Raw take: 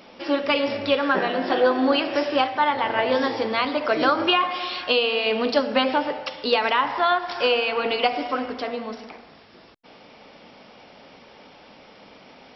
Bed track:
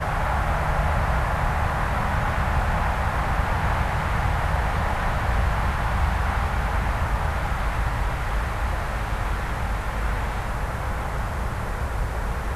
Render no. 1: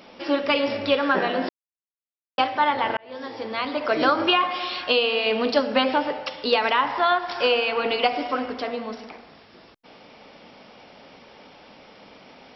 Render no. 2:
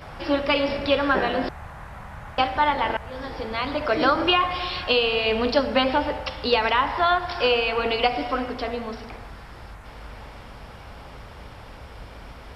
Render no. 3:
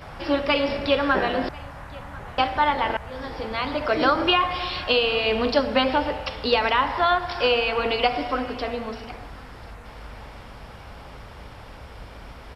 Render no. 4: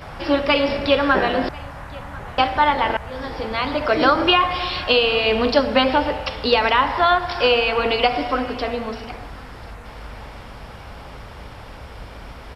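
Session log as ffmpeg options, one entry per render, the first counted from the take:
-filter_complex "[0:a]asplit=4[s0][s1][s2][s3];[s0]atrim=end=1.49,asetpts=PTS-STARTPTS,afade=t=out:st=1.486:d=0.004:c=hsin[s4];[s1]atrim=start=1.49:end=2.38,asetpts=PTS-STARTPTS,volume=0[s5];[s2]atrim=start=2.38:end=2.97,asetpts=PTS-STARTPTS,afade=t=in:d=0.004:c=hsin,afade=t=out:st=0.586:d=0.004:c=hsin[s6];[s3]atrim=start=2.97,asetpts=PTS-STARTPTS,afade=t=in:d=1.03[s7];[s4][s5][s6][s7]concat=n=4:v=0:a=1"
-filter_complex "[1:a]volume=0.168[s0];[0:a][s0]amix=inputs=2:normalize=0"
-af "aecho=1:1:1042:0.075"
-af "volume=1.58,alimiter=limit=0.794:level=0:latency=1"

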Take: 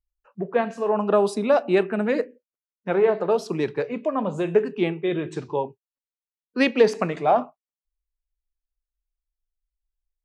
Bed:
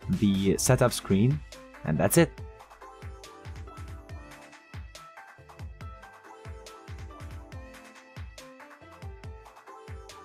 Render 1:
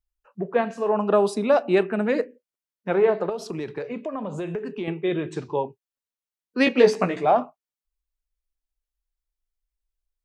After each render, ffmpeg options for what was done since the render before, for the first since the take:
-filter_complex "[0:a]asettb=1/sr,asplit=3[s0][s1][s2];[s0]atrim=end=3.294[s3];[s1]atrim=start=3.29:end=4.88,asetpts=PTS-STARTPTS,afade=t=in:d=0.004:c=qsin,afade=t=out:st=1.586:d=0.004:c=qsin,acompressor=threshold=0.0501:ratio=6:attack=3.2:release=140:knee=1:detection=peak[s4];[s2]atrim=start=4.876[s5];[s3][s4]acrossfade=d=0.004:c1=hsin:c2=qsin[s6];[s6][s5]acrossfade=d=0.004:c1=qsin:c2=hsin,asettb=1/sr,asplit=3[s7][s8][s9];[s7]atrim=end=6.654[s10];[s8]atrim=start=6.65:end=7.25,asetpts=PTS-STARTPTS,afade=t=in:d=0.004:c=qsin,afade=t=out:st=0.596:d=0.004:c=qsin,asplit=2[s11][s12];[s12]adelay=16,volume=0.708[s13];[s11][s13]amix=inputs=2:normalize=0,atrim=end_sample=26460[s14];[s9]atrim=start=7.246[s15];[s10][s14]acrossfade=d=0.004:c1=hsin:c2=qsin[s16];[s16][s15]acrossfade=d=0.004:c1=qsin:c2=hsin"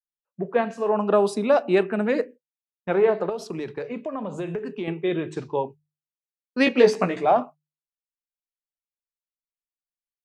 -af "agate=range=0.0224:threshold=0.0224:ratio=3:detection=peak,bandreject=f=50:t=h:w=6,bandreject=f=100:t=h:w=6,bandreject=f=150:t=h:w=6"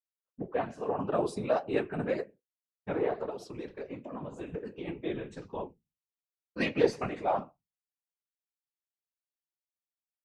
-af "flanger=delay=8.1:depth=7.1:regen=-47:speed=1.8:shape=sinusoidal,afftfilt=real='hypot(re,im)*cos(2*PI*random(0))':imag='hypot(re,im)*sin(2*PI*random(1))':win_size=512:overlap=0.75"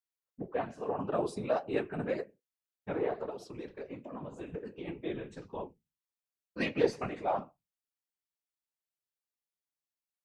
-af "volume=0.75"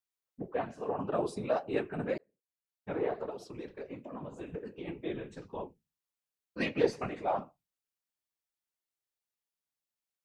-filter_complex "[0:a]asplit=2[s0][s1];[s0]atrim=end=2.18,asetpts=PTS-STARTPTS,afade=t=out:st=2.176:d=0.004:c=hsin[s2];[s1]atrim=start=2.18,asetpts=PTS-STARTPTS,afade=t=in:d=0.83[s3];[s2][s3]concat=n=2:v=0:a=1"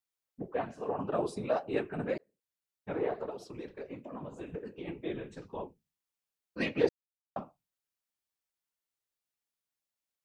-filter_complex "[0:a]asplit=3[s0][s1][s2];[s0]atrim=end=6.89,asetpts=PTS-STARTPTS,afade=t=out:st=6.886:d=0.004:c=hsin[s3];[s1]atrim=start=6.89:end=7.36,asetpts=PTS-STARTPTS,volume=0[s4];[s2]atrim=start=7.36,asetpts=PTS-STARTPTS,afade=t=in:d=0.004:c=hsin[s5];[s3][s4][s5]concat=n=3:v=0:a=1"

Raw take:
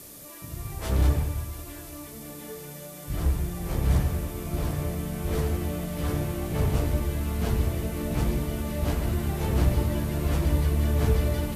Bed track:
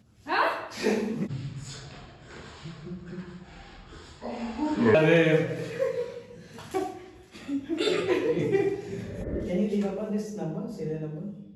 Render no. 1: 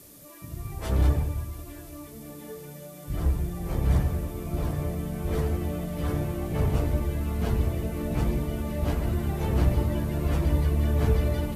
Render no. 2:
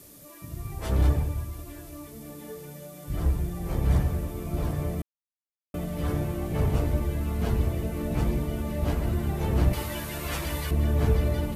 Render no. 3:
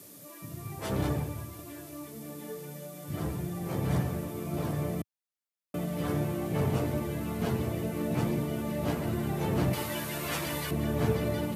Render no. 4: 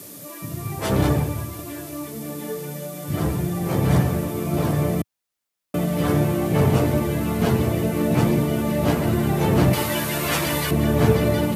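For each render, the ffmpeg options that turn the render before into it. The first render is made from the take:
-af "afftdn=nr=6:nf=-42"
-filter_complex "[0:a]asettb=1/sr,asplit=3[s0][s1][s2];[s0]atrim=end=9.734[s3];[s1]atrim=start=9.73:end=10.71,asetpts=PTS-STARTPTS,afade=t=in:d=0.004:c=qsin,afade=t=out:st=0.976:d=0.004:c=qsin,tiltshelf=f=800:g=-9.5[s4];[s2]atrim=start=10.706[s5];[s3][s4]acrossfade=d=0.004:c1=hsin:c2=qsin[s6];[s6][s5]acrossfade=d=0.004:c1=qsin:c2=hsin,asplit=3[s7][s8][s9];[s7]atrim=end=5.02,asetpts=PTS-STARTPTS,afade=t=out:st=5.016:d=0.004:c=hsin[s10];[s8]atrim=start=5.02:end=5.74,asetpts=PTS-STARTPTS,volume=0[s11];[s9]atrim=start=5.74,asetpts=PTS-STARTPTS,afade=t=in:d=0.004:c=hsin[s12];[s10][s11][s12]concat=n=3:v=0:a=1"
-af "highpass=f=110:w=0.5412,highpass=f=110:w=1.3066"
-af "volume=3.35"

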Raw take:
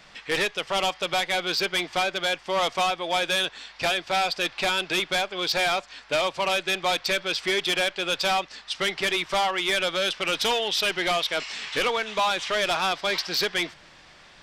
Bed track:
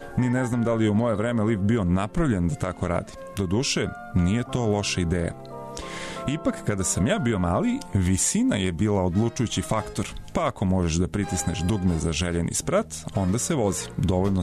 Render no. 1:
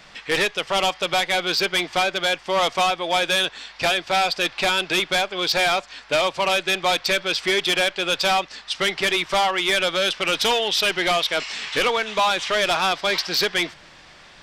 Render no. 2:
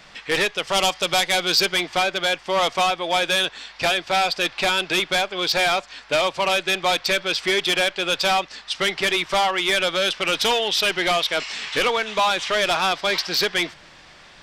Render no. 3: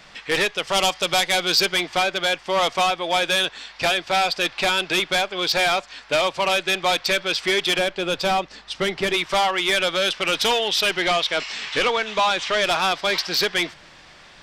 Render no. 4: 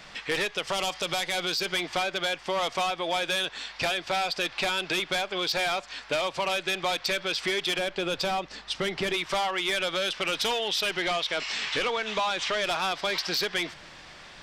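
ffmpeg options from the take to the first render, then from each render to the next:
-af "volume=1.58"
-filter_complex "[0:a]asettb=1/sr,asplit=3[s0][s1][s2];[s0]atrim=end=0.644[s3];[s1]atrim=start=0.64:end=1.74,asetpts=PTS-STARTPTS,afade=t=in:d=0.004:c=qsin,afade=t=out:st=1.096:d=0.004:c=qsin,bass=f=250:g=2,treble=f=4000:g=7[s4];[s2]atrim=start=1.736[s5];[s3][s4]acrossfade=d=0.004:c1=hsin:c2=qsin[s6];[s6][s5]acrossfade=d=0.004:c1=qsin:c2=hsin"
-filter_complex "[0:a]asettb=1/sr,asplit=3[s0][s1][s2];[s0]atrim=end=7.784[s3];[s1]atrim=start=7.78:end=9.14,asetpts=PTS-STARTPTS,afade=t=in:d=0.004:c=qsin,afade=t=out:st=1.356:d=0.004:c=qsin,tiltshelf=f=720:g=5[s4];[s2]atrim=start=9.136[s5];[s3][s4]acrossfade=d=0.004:c1=hsin:c2=qsin[s6];[s6][s5]acrossfade=d=0.004:c1=qsin:c2=hsin,asettb=1/sr,asplit=3[s7][s8][s9];[s7]atrim=end=11.024[s10];[s8]atrim=start=11.02:end=12.64,asetpts=PTS-STARTPTS,afade=t=in:d=0.004:c=qsin,afade=t=out:st=1.616:d=0.004:c=qsin,lowpass=8000[s11];[s9]atrim=start=12.636[s12];[s10][s11]acrossfade=d=0.004:c1=hsin:c2=qsin[s13];[s13][s12]acrossfade=d=0.004:c1=qsin:c2=hsin"
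-af "alimiter=limit=0.133:level=0:latency=1,acompressor=threshold=0.0562:ratio=6"

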